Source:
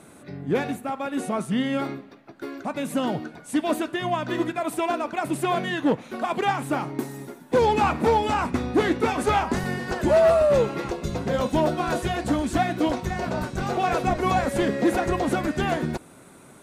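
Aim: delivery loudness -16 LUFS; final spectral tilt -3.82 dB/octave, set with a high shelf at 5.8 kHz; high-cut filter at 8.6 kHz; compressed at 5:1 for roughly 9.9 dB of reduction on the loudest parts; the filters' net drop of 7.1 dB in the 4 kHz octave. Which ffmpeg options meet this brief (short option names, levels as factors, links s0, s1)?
-af "lowpass=8600,equalizer=f=4000:t=o:g=-7.5,highshelf=f=5800:g=-7,acompressor=threshold=0.0447:ratio=5,volume=5.96"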